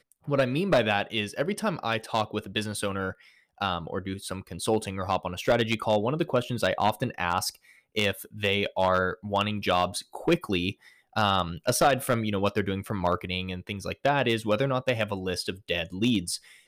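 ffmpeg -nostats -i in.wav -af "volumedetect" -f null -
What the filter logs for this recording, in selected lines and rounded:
mean_volume: -27.8 dB
max_volume: -9.6 dB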